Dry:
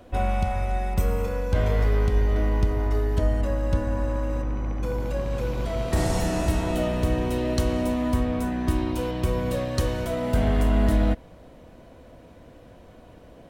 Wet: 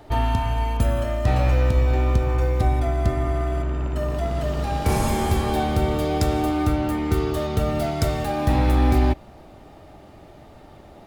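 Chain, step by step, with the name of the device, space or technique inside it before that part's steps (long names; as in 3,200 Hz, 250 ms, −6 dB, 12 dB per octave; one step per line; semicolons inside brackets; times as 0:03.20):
nightcore (speed change +22%)
level +2.5 dB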